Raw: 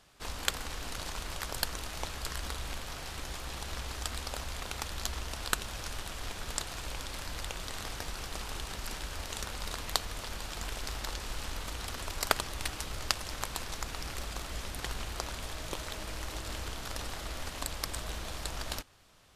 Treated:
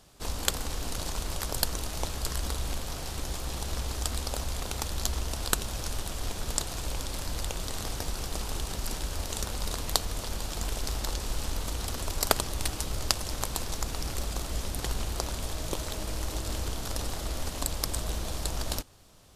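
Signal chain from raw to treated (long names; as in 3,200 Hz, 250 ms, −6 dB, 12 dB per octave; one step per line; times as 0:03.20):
parametric band 1,900 Hz −9 dB 2.2 octaves
level +7.5 dB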